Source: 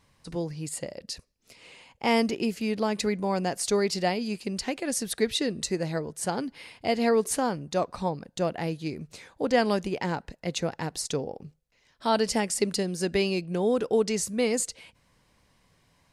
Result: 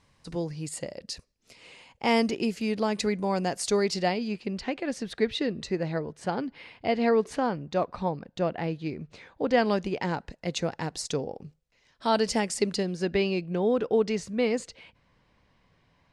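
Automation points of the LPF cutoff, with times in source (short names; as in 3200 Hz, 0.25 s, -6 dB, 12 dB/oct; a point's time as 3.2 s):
3.85 s 9100 Hz
4.39 s 3400 Hz
9.27 s 3400 Hz
10.41 s 7800 Hz
12.51 s 7800 Hz
13.08 s 3600 Hz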